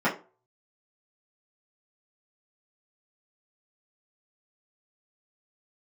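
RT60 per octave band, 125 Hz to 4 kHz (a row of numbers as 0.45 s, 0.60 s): 0.35 s, 0.35 s, 0.40 s, 0.35 s, 0.25 s, 0.20 s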